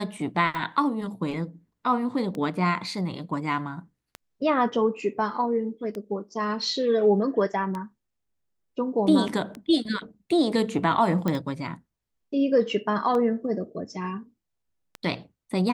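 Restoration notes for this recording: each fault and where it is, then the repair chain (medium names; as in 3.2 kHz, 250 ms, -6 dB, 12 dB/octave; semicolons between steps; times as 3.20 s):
tick 33 1/3 rpm -20 dBFS
11.28 s: pop -14 dBFS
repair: de-click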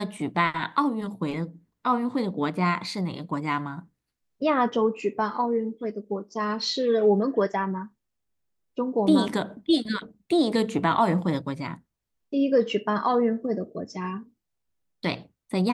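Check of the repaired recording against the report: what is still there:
nothing left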